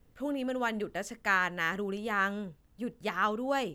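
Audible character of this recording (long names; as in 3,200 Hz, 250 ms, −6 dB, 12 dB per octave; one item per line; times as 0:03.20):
background noise floor −63 dBFS
spectral slope −2.5 dB per octave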